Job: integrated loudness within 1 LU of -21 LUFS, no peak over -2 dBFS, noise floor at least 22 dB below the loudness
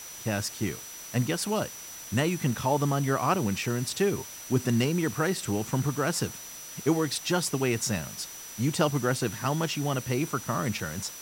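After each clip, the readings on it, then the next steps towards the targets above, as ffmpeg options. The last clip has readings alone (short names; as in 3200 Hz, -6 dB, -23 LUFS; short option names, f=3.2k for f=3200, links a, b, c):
steady tone 5900 Hz; tone level -43 dBFS; noise floor -43 dBFS; noise floor target -51 dBFS; loudness -28.5 LUFS; peak -11.5 dBFS; loudness target -21.0 LUFS
-> -af "bandreject=f=5.9k:w=30"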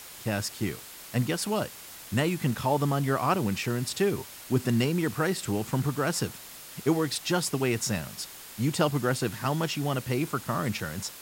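steady tone none; noise floor -45 dBFS; noise floor target -51 dBFS
-> -af "afftdn=nr=6:nf=-45"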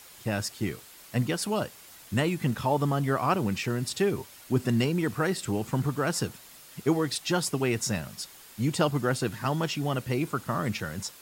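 noise floor -50 dBFS; noise floor target -51 dBFS
-> -af "afftdn=nr=6:nf=-50"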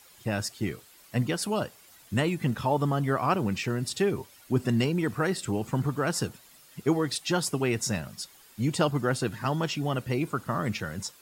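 noise floor -55 dBFS; loudness -29.0 LUFS; peak -12.0 dBFS; loudness target -21.0 LUFS
-> -af "volume=8dB"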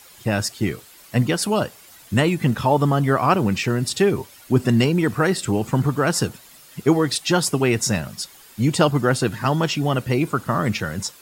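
loudness -21.0 LUFS; peak -4.0 dBFS; noise floor -47 dBFS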